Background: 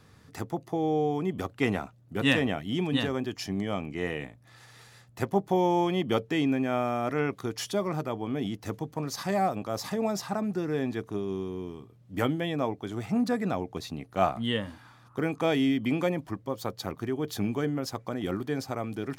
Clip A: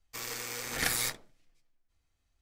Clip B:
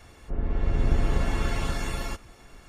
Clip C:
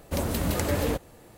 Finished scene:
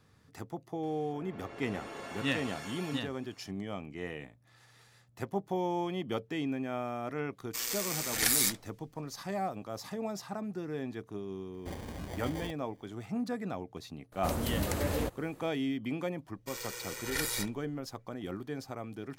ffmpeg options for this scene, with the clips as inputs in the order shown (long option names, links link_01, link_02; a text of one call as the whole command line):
ffmpeg -i bed.wav -i cue0.wav -i cue1.wav -i cue2.wav -filter_complex "[1:a]asplit=2[link_01][link_02];[3:a]asplit=2[link_03][link_04];[0:a]volume=-8dB[link_05];[2:a]highpass=370[link_06];[link_01]highshelf=frequency=3300:gain=10.5[link_07];[link_03]acrusher=samples=33:mix=1:aa=0.000001[link_08];[link_02]aecho=1:1:2.1:0.86[link_09];[link_06]atrim=end=2.68,asetpts=PTS-STARTPTS,volume=-8.5dB,afade=type=in:duration=0.004:curve=hsin,afade=type=out:start_time=2.676:duration=0.004:curve=hsin,adelay=830[link_10];[link_07]atrim=end=2.41,asetpts=PTS-STARTPTS,volume=-4dB,afade=type=in:duration=0.004:curve=hsin,afade=type=out:start_time=2.406:duration=0.004:curve=hsin,adelay=7400[link_11];[link_08]atrim=end=1.37,asetpts=PTS-STARTPTS,volume=-14.5dB,afade=type=in:duration=0.004:curve=hsin,afade=type=out:start_time=1.366:duration=0.004:curve=hsin,adelay=508914S[link_12];[link_04]atrim=end=1.37,asetpts=PTS-STARTPTS,volume=-5.5dB,afade=type=in:duration=0.004:curve=hsin,afade=type=out:start_time=1.366:duration=0.004:curve=hsin,adelay=622692S[link_13];[link_09]atrim=end=2.41,asetpts=PTS-STARTPTS,volume=-6dB,afade=type=in:duration=0.004:curve=hsin,afade=type=out:start_time=2.406:duration=0.004:curve=hsin,adelay=16330[link_14];[link_05][link_10][link_11][link_12][link_13][link_14]amix=inputs=6:normalize=0" out.wav